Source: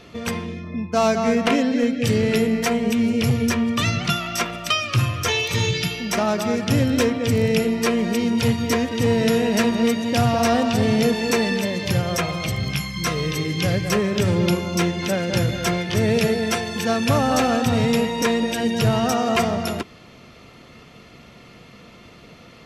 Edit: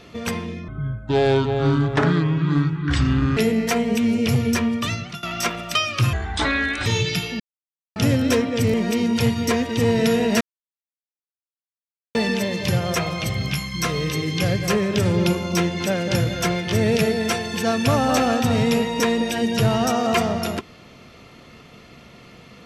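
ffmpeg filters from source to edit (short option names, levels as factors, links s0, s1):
-filter_complex "[0:a]asplit=11[s0][s1][s2][s3][s4][s5][s6][s7][s8][s9][s10];[s0]atrim=end=0.684[s11];[s1]atrim=start=0.68:end=2.32,asetpts=PTS-STARTPTS,asetrate=26901,aresample=44100[s12];[s2]atrim=start=2.316:end=4.18,asetpts=PTS-STARTPTS,afade=t=out:st=1.284:d=0.58:silence=0.11885[s13];[s3]atrim=start=4.18:end=5.084,asetpts=PTS-STARTPTS,afade=t=in:d=0.004:c=hsin:silence=0.11885[s14];[s4]atrim=start=5.08:end=5.54,asetpts=PTS-STARTPTS,asetrate=27783,aresample=44100[s15];[s5]atrim=start=5.536:end=6.08,asetpts=PTS-STARTPTS,afade=t=out:st=0.54:d=0.004:c=hsin[s16];[s6]atrim=start=6.08:end=6.64,asetpts=PTS-STARTPTS,volume=0[s17];[s7]atrim=start=6.64:end=7.422,asetpts=PTS-STARTPTS,afade=t=in:d=0.004:c=hsin[s18];[s8]atrim=start=7.958:end=9.63,asetpts=PTS-STARTPTS,afade=t=out:st=1.668:d=0.004:c=hsin[s19];[s9]atrim=start=9.63:end=11.37,asetpts=PTS-STARTPTS,volume=0[s20];[s10]atrim=start=11.37,asetpts=PTS-STARTPTS,afade=t=in:d=0.004:c=hsin[s21];[s11][s12]acrossfade=d=0.004:c1=hsin:c2=hsin[s22];[s13][s14]concat=n=2:v=0:a=1[s23];[s22][s23]acrossfade=d=0.004:c1=hsin:c2=hsin[s24];[s24][s15]acrossfade=d=0.004:c1=hsin:c2=hsin[s25];[s16][s17][s18]concat=n=3:v=0:a=1[s26];[s25][s26]acrossfade=d=0.004:c1=hsin:c2=hsin[s27];[s19][s20][s21]concat=n=3:v=0:a=1[s28];[s27][s28]acrossfade=d=0.004:c1=hsin:c2=hsin"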